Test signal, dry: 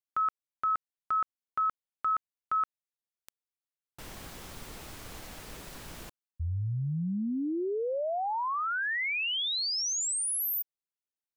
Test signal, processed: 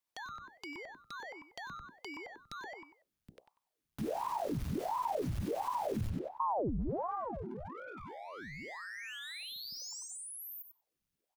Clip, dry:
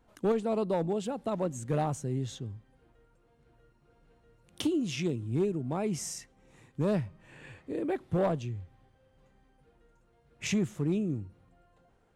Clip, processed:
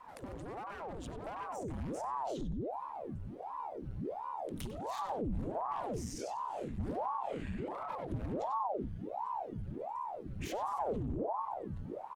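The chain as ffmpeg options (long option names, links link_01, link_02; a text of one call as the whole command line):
ffmpeg -i in.wav -filter_complex "[0:a]bandreject=frequency=60:width_type=h:width=6,bandreject=frequency=120:width_type=h:width=6,bandreject=frequency=180:width_type=h:width=6,bandreject=frequency=240:width_type=h:width=6,bandreject=frequency=300:width_type=h:width=6,bandreject=frequency=360:width_type=h:width=6,bandreject=frequency=420:width_type=h:width=6,bandreject=frequency=480:width_type=h:width=6,bandreject=frequency=540:width_type=h:width=6,acrossover=split=120|5900[link_01][link_02][link_03];[link_01]acompressor=threshold=-51dB:ratio=1.5[link_04];[link_02]acompressor=threshold=-33dB:ratio=8[link_05];[link_03]acompressor=threshold=-44dB:ratio=8[link_06];[link_04][link_05][link_06]amix=inputs=3:normalize=0,aeval=exprs='0.0224*(abs(mod(val(0)/0.0224+3,4)-2)-1)':channel_layout=same,lowshelf=frequency=150:gain=11.5,asplit=2[link_07][link_08];[link_08]adelay=95,lowpass=frequency=3600:poles=1,volume=-5.5dB,asplit=2[link_09][link_10];[link_10]adelay=95,lowpass=frequency=3600:poles=1,volume=0.28,asplit=2[link_11][link_12];[link_12]adelay=95,lowpass=frequency=3600:poles=1,volume=0.28,asplit=2[link_13][link_14];[link_14]adelay=95,lowpass=frequency=3600:poles=1,volume=0.28[link_15];[link_07][link_09][link_11][link_13][link_15]amix=inputs=5:normalize=0,asoftclip=type=tanh:threshold=-31dB,bandreject=frequency=7700:width=15,acompressor=threshold=-50dB:ratio=6:attack=6.3:release=56:knee=6:detection=rms,asubboost=boost=3.5:cutoff=230,aeval=exprs='val(0)*sin(2*PI*530*n/s+530*0.9/1.4*sin(2*PI*1.4*n/s))':channel_layout=same,volume=8dB" out.wav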